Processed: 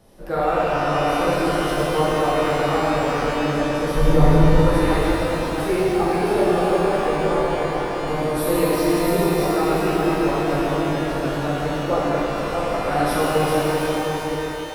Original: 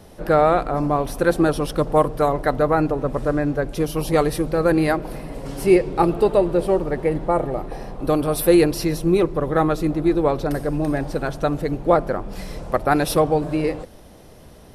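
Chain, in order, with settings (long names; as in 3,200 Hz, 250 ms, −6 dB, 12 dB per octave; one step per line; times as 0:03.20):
feedback delay that plays each chunk backwards 350 ms, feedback 45%, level −3 dB
0:03.95–0:04.59: RIAA equalisation playback
reverb with rising layers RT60 3 s, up +12 semitones, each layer −8 dB, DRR −7 dB
level −10.5 dB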